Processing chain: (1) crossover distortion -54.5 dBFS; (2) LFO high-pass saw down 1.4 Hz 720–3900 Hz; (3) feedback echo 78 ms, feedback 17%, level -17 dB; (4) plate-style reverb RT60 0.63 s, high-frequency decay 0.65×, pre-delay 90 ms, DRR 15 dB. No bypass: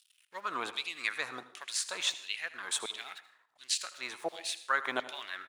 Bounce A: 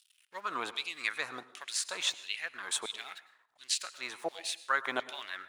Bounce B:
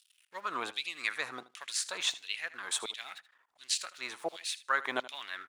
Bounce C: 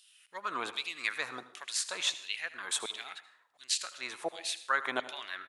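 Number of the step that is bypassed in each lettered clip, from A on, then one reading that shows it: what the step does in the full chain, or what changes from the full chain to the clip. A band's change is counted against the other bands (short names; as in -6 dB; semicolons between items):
3, echo-to-direct -13.0 dB to -15.0 dB; 4, echo-to-direct -13.0 dB to -17.0 dB; 1, distortion -29 dB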